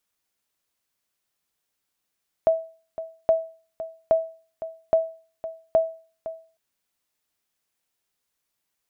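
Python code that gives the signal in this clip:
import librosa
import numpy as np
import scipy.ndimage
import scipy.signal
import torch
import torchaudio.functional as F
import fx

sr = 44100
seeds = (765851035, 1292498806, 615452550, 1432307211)

y = fx.sonar_ping(sr, hz=651.0, decay_s=0.39, every_s=0.82, pings=5, echo_s=0.51, echo_db=-14.0, level_db=-11.0)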